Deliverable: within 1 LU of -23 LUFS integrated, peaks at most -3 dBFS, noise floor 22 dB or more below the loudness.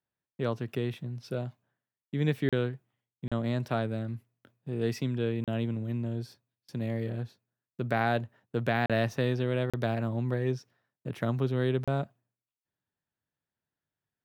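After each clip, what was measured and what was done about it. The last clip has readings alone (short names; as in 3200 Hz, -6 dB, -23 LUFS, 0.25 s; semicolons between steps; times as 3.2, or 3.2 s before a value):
dropouts 6; longest dropout 36 ms; loudness -32.0 LUFS; peak -13.5 dBFS; loudness target -23.0 LUFS
-> interpolate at 2.49/3.28/5.44/8.86/9.7/11.84, 36 ms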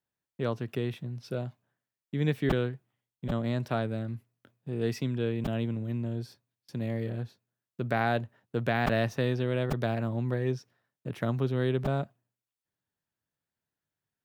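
dropouts 0; loudness -31.5 LUFS; peak -12.0 dBFS; loudness target -23.0 LUFS
-> gain +8.5 dB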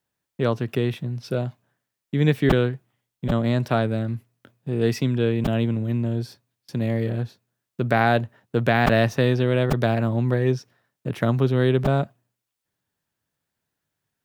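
loudness -23.0 LUFS; peak -3.5 dBFS; noise floor -84 dBFS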